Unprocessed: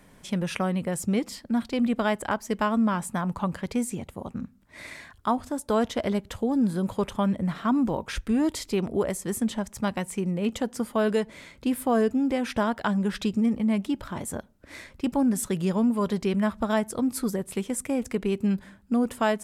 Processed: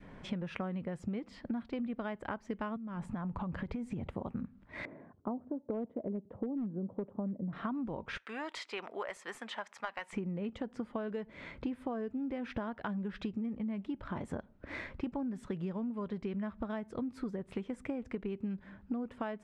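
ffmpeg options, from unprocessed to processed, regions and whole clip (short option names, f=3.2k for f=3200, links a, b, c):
-filter_complex "[0:a]asettb=1/sr,asplit=3[a][b][c];[a]atrim=end=2.764[d];[b]atrim=start=2.76:end=4.08,asetpts=PTS-STARTPTS,afade=t=in:d=0.004:c=qsin,afade=t=out:st=1.316:d=0.004:c=qsin,acompressor=threshold=-36dB:ratio=20:attack=3.2:release=140:knee=1:detection=peak,lowshelf=f=190:g=9.5[e];[c]atrim=start=4.076[f];[d][e]acrossfade=d=0.004:c1=hsin:c2=qsin[g];[g][f]acrossfade=d=0.004:c1=qsin:c2=hsin,asettb=1/sr,asplit=3[h][i][j];[h]atrim=end=4.854[k];[i]atrim=start=4.85:end=7.53,asetpts=PTS-STARTPTS,afade=t=in:d=0.004:c=qsin,afade=t=out:st=2.676:d=0.004:c=qsin,asuperpass=centerf=300:order=4:qfactor=0.68,asoftclip=type=hard:threshold=-19dB[l];[j]atrim=start=7.526[m];[k][l]acrossfade=d=0.004:c1=hsin:c2=qsin[n];[n][m]acrossfade=d=0.004:c1=qsin:c2=hsin,asettb=1/sr,asplit=3[o][p][q];[o]atrim=end=8.174[r];[p]atrim=start=8.17:end=10.13,asetpts=PTS-STARTPTS,afade=t=in:d=0.004:c=qsin,afade=t=out:st=1.956:d=0.004:c=qsin,highpass=1.1k,aeval=exprs='clip(val(0),-1,0.0447)':c=same[s];[q]atrim=start=10.126[t];[r][s]acrossfade=d=0.004:c1=hsin:c2=qsin[u];[u][t]acrossfade=d=0.004:c1=qsin:c2=hsin,lowpass=2.3k,adynamicequalizer=threshold=0.0112:dfrequency=850:dqfactor=0.9:tfrequency=850:tqfactor=0.9:attack=5:release=100:ratio=0.375:range=2:mode=cutabove:tftype=bell,acompressor=threshold=-37dB:ratio=16,volume=3dB"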